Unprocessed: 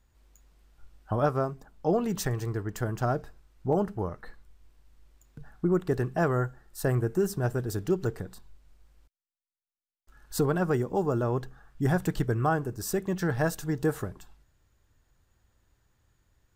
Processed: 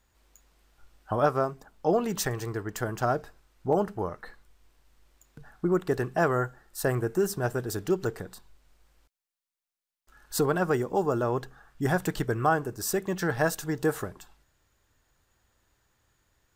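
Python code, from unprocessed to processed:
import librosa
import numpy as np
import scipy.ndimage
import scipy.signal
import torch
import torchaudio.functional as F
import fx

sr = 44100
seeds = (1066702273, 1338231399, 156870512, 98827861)

y = fx.low_shelf(x, sr, hz=260.0, db=-9.5)
y = y * 10.0 ** (4.0 / 20.0)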